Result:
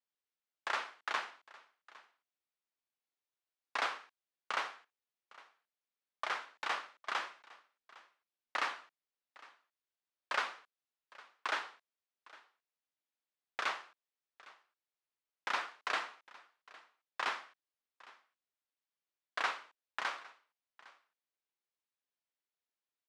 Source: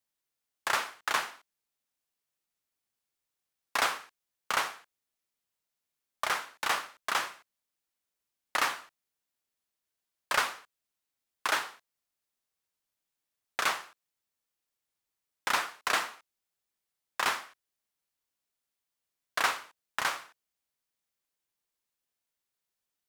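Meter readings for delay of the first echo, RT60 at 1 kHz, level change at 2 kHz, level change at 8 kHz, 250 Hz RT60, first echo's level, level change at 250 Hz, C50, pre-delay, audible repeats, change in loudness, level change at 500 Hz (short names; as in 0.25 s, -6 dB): 0.808 s, none, -6.5 dB, -16.0 dB, none, -21.5 dB, -9.0 dB, none, none, 1, -7.5 dB, -6.5 dB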